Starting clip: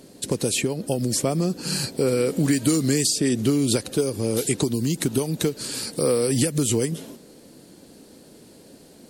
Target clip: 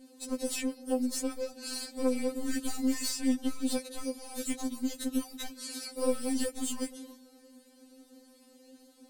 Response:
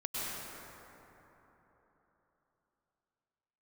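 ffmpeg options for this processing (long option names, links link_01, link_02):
-af "aeval=exprs='clip(val(0),-1,0.0631)':channel_layout=same,afftfilt=real='re*3.46*eq(mod(b,12),0)':imag='im*3.46*eq(mod(b,12),0)':win_size=2048:overlap=0.75,volume=-7.5dB"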